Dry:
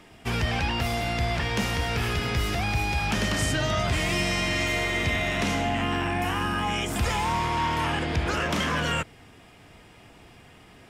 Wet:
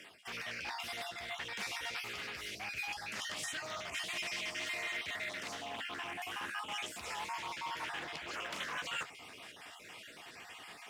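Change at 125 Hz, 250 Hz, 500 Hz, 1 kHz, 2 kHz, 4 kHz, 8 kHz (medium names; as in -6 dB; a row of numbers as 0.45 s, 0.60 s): -31.5 dB, -24.5 dB, -18.0 dB, -14.5 dB, -11.0 dB, -10.5 dB, -10.5 dB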